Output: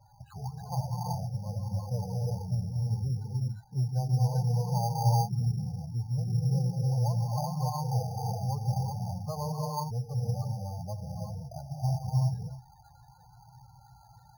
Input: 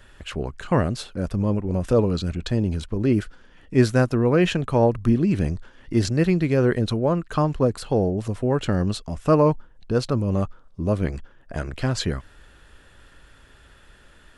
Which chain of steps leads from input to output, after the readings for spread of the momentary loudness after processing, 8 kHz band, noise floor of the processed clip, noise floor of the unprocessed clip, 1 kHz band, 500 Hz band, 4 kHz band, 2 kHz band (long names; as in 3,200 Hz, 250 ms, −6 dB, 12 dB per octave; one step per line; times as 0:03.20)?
11 LU, −6.0 dB, −57 dBFS, −52 dBFS, −5.5 dB, −19.5 dB, −12.0 dB, below −35 dB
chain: parametric band 440 Hz +3.5 dB 0.73 octaves
downward compressor 2 to 1, threshold −38 dBFS, peak gain reduction 15 dB
pair of resonant band-passes 320 Hz, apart 2.7 octaves
echo ahead of the sound 32 ms −19 dB
reverb whose tail is shaped and stops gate 400 ms rising, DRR −3 dB
spectral peaks only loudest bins 16
bad sample-rate conversion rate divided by 8×, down filtered, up hold
level +8 dB